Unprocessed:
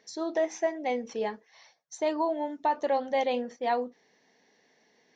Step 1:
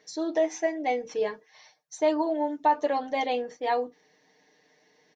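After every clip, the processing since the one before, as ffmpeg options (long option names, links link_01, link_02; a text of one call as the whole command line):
ffmpeg -i in.wav -af "aecho=1:1:6.6:0.8" out.wav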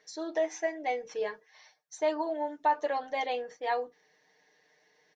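ffmpeg -i in.wav -af "equalizer=frequency=100:width_type=o:width=0.67:gain=-6,equalizer=frequency=250:width_type=o:width=0.67:gain=-9,equalizer=frequency=1600:width_type=o:width=0.67:gain=4,volume=-4dB" out.wav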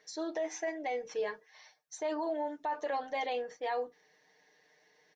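ffmpeg -i in.wav -af "alimiter=level_in=2.5dB:limit=-24dB:level=0:latency=1:release=22,volume=-2.5dB" out.wav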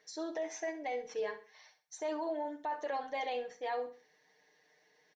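ffmpeg -i in.wav -af "aecho=1:1:65|130|195:0.237|0.0735|0.0228,volume=-2.5dB" out.wav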